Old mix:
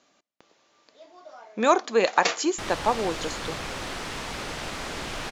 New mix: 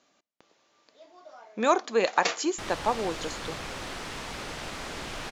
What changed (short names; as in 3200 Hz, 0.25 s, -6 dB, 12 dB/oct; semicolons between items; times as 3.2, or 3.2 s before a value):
speech -3.0 dB; background -3.5 dB